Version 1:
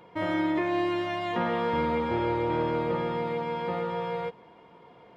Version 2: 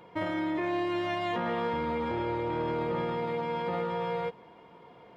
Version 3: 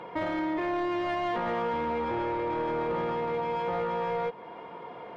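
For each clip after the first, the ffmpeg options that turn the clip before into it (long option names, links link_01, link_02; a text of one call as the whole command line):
ffmpeg -i in.wav -af "alimiter=limit=-23.5dB:level=0:latency=1:release=12" out.wav
ffmpeg -i in.wav -filter_complex "[0:a]asplit=2[link_01][link_02];[link_02]highpass=frequency=720:poles=1,volume=14dB,asoftclip=type=tanh:threshold=-23dB[link_03];[link_01][link_03]amix=inputs=2:normalize=0,lowpass=frequency=1200:poles=1,volume=-6dB,acompressor=threshold=-44dB:ratio=1.5,volume=6.5dB" out.wav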